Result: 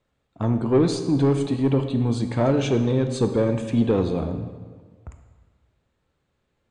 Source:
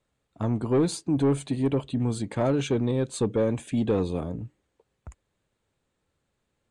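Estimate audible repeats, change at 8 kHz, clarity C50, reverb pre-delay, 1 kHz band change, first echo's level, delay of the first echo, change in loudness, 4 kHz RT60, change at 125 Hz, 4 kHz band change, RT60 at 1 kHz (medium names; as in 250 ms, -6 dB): no echo, -1.0 dB, 8.5 dB, 19 ms, +4.0 dB, no echo, no echo, +4.0 dB, 1.1 s, +5.0 dB, +4.0 dB, 1.5 s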